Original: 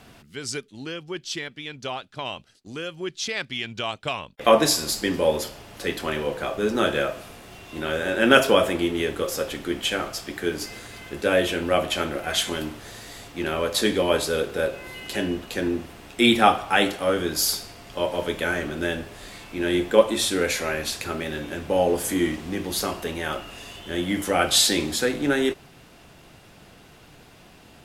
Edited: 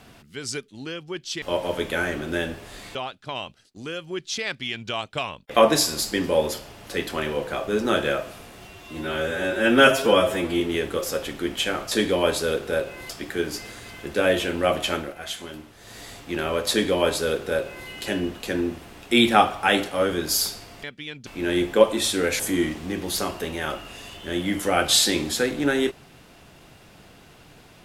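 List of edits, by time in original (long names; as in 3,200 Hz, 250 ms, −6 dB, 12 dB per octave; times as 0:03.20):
0:01.42–0:01.85: swap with 0:17.91–0:19.44
0:07.57–0:08.86: time-stretch 1.5×
0:12.03–0:13.06: duck −9 dB, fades 0.19 s
0:13.78–0:14.96: duplicate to 0:10.17
0:20.57–0:22.02: remove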